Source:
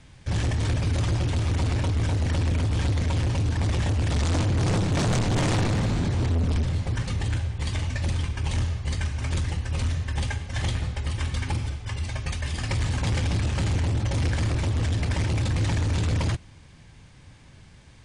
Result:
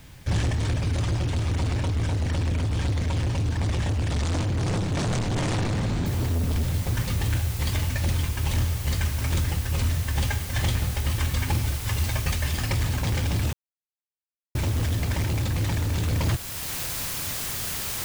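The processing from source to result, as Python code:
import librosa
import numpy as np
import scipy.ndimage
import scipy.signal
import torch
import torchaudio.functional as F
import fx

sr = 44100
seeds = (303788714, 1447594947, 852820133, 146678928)

y = fx.noise_floor_step(x, sr, seeds[0], at_s=6.06, before_db=-62, after_db=-41, tilt_db=0.0)
y = fx.edit(y, sr, fx.silence(start_s=13.53, length_s=1.02), tone=tone)
y = fx.rider(y, sr, range_db=10, speed_s=0.5)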